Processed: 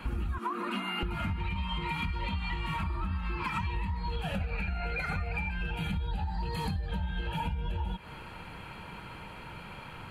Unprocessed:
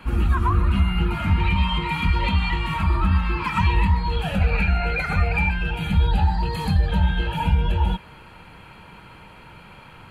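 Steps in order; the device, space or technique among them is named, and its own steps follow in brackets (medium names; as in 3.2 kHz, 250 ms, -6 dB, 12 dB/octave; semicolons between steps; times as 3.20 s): 0.38–1.03 s: steep high-pass 210 Hz 72 dB/octave; serial compression, leveller first (compression 2:1, threshold -24 dBFS, peak gain reduction 6.5 dB; compression, threshold -30 dBFS, peak gain reduction 11 dB)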